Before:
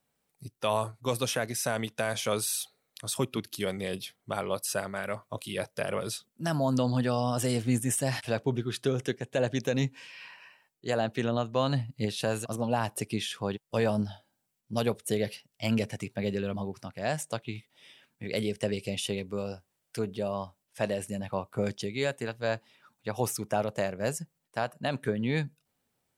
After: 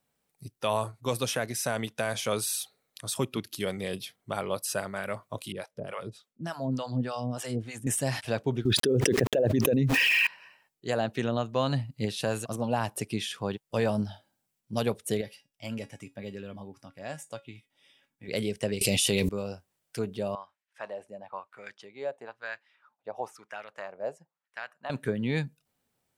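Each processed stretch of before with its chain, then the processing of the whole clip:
5.52–7.87 s: treble shelf 7.5 kHz -8.5 dB + harmonic tremolo 3.4 Hz, depth 100%, crossover 570 Hz
8.65–10.27 s: resonances exaggerated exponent 2 + small samples zeroed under -56.5 dBFS + level flattener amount 100%
15.21–18.28 s: band-stop 4.2 kHz, Q 11 + feedback comb 280 Hz, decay 0.19 s, mix 70%
18.81–19.29 s: treble shelf 3.7 kHz +11 dB + level flattener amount 100%
20.35–24.90 s: treble shelf 3.2 kHz +6.5 dB + wah-wah 1 Hz 630–1900 Hz, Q 2.3
whole clip: none

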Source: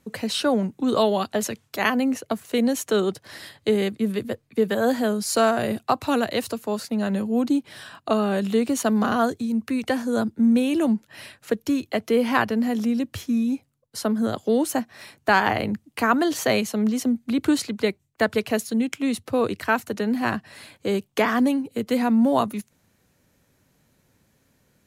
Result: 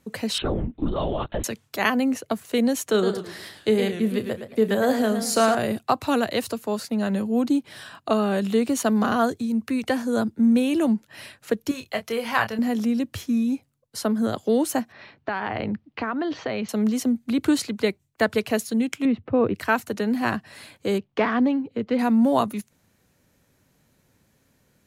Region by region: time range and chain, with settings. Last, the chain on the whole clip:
0.38–1.44 s: peaking EQ 270 Hz +5.5 dB 0.55 oct + compression 3:1, threshold -23 dBFS + LPC vocoder at 8 kHz whisper
2.91–5.55 s: doubling 32 ms -13 dB + modulated delay 109 ms, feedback 34%, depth 175 cents, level -8.5 dB
11.71–12.59 s: peaking EQ 290 Hz -14 dB 1.1 oct + doubling 27 ms -8.5 dB
14.92–16.69 s: Bessel low-pass 2.9 kHz, order 8 + compression 10:1, threshold -22 dBFS
19.05–19.55 s: low-pass 2.8 kHz 24 dB/octave + tilt shelf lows +4.5 dB, about 640 Hz
20.98–21.99 s: self-modulated delay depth 0.063 ms + distance through air 240 m
whole clip: none

